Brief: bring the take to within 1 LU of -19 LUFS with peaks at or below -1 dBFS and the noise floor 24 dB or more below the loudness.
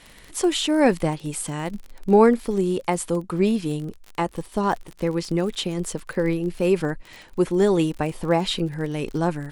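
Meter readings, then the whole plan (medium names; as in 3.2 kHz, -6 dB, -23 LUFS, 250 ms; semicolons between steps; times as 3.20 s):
tick rate 44 per s; loudness -23.5 LUFS; peak level -4.0 dBFS; loudness target -19.0 LUFS
-> de-click; trim +4.5 dB; peak limiter -1 dBFS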